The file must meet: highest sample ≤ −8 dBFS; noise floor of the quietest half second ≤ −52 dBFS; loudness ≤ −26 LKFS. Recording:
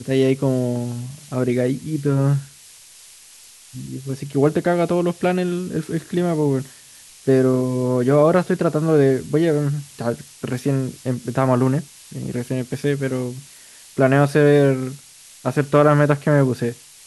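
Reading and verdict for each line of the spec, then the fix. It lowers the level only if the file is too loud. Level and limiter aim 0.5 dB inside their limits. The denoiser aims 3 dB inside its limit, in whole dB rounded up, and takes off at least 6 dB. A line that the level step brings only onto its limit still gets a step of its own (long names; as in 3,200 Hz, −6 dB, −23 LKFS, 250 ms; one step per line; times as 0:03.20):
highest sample −4.5 dBFS: out of spec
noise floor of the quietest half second −46 dBFS: out of spec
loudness −20.0 LKFS: out of spec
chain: level −6.5 dB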